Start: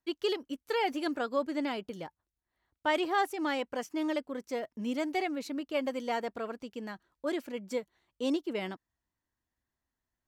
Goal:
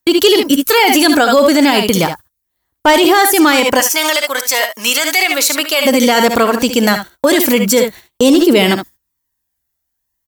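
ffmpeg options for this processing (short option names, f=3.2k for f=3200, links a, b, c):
-filter_complex "[0:a]aemphasis=mode=production:type=75fm,agate=range=-27dB:threshold=-57dB:ratio=16:detection=peak,asplit=3[a][b][c];[a]afade=t=out:st=3.79:d=0.02[d];[b]highpass=1k,afade=t=in:st=3.79:d=0.02,afade=t=out:st=5.85:d=0.02[e];[c]afade=t=in:st=5.85:d=0.02[f];[d][e][f]amix=inputs=3:normalize=0,acrusher=bits=9:mode=log:mix=0:aa=0.000001,aphaser=in_gain=1:out_gain=1:delay=1.5:decay=0.3:speed=0.36:type=triangular,asoftclip=type=hard:threshold=-21dB,aecho=1:1:57|71:0.168|0.266,alimiter=level_in=31.5dB:limit=-1dB:release=50:level=0:latency=1,volume=-1dB"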